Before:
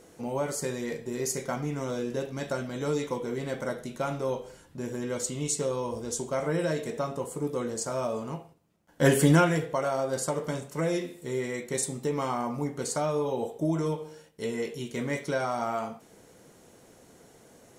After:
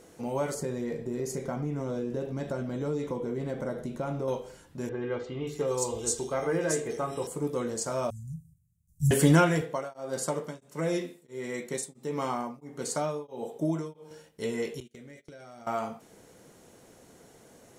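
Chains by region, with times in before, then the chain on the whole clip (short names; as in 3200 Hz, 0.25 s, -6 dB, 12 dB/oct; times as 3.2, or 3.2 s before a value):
0.54–4.28 tilt shelf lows +6 dB, about 1100 Hz + compressor 2:1, threshold -32 dBFS
4.89–7.27 notches 50/100/150/200/250/300/350/400 Hz + comb 2.5 ms, depth 41% + bands offset in time lows, highs 0.58 s, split 3200 Hz
8.1–9.11 inverse Chebyshev band-stop 390–2700 Hz, stop band 60 dB + low shelf 260 Hz +9.5 dB
9.61–14.11 Chebyshev high-pass 160 Hz + beating tremolo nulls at 1.5 Hz
14.8–15.67 gate -37 dBFS, range -26 dB + bell 1000 Hz -14 dB 0.59 oct + compressor 8:1, threshold -45 dBFS
whole clip: dry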